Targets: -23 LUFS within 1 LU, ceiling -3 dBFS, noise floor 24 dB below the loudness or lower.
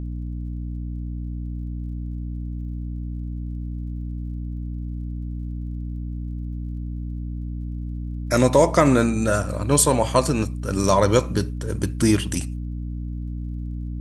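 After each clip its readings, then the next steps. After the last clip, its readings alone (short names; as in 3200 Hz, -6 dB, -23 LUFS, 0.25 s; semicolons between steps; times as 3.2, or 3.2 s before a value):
ticks 43/s; hum 60 Hz; harmonics up to 300 Hz; hum level -27 dBFS; loudness -24.5 LUFS; peak -2.5 dBFS; loudness target -23.0 LUFS
-> de-click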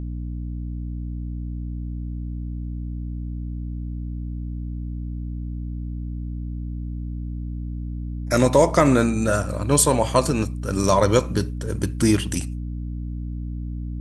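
ticks 0/s; hum 60 Hz; harmonics up to 300 Hz; hum level -27 dBFS
-> notches 60/120/180/240/300 Hz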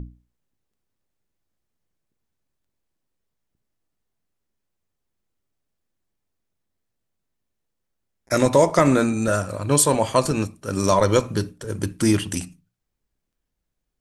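hum none; loudness -20.5 LUFS; peak -3.0 dBFS; loudness target -23.0 LUFS
-> gain -2.5 dB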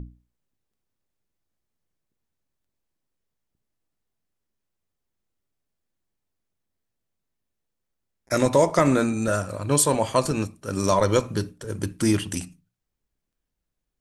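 loudness -23.0 LUFS; peak -5.5 dBFS; noise floor -82 dBFS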